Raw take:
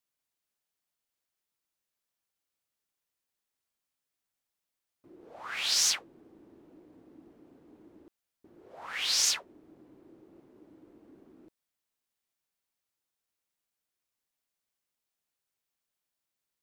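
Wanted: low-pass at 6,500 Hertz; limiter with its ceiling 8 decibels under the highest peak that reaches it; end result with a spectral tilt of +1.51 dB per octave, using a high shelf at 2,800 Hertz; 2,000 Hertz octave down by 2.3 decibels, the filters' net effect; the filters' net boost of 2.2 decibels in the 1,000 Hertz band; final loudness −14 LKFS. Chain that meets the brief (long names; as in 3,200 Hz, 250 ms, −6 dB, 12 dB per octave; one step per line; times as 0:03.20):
low-pass filter 6,500 Hz
parametric band 1,000 Hz +4 dB
parametric band 2,000 Hz −6.5 dB
high-shelf EQ 2,800 Hz +5.5 dB
level +16.5 dB
brickwall limiter −4 dBFS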